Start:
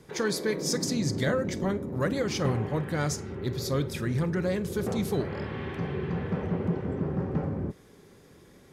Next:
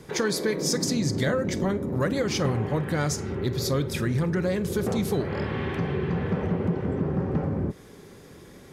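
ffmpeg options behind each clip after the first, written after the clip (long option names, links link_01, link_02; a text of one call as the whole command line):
ffmpeg -i in.wav -af "acompressor=threshold=-32dB:ratio=2,volume=7dB" out.wav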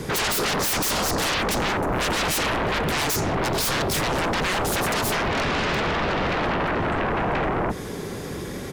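ffmpeg -i in.wav -filter_complex "[0:a]aeval=exprs='0.251*sin(PI/2*10*val(0)/0.251)':channel_layout=same,asplit=2[link_01][link_02];[link_02]adelay=699.7,volume=-22dB,highshelf=frequency=4000:gain=-15.7[link_03];[link_01][link_03]amix=inputs=2:normalize=0,volume=-8.5dB" out.wav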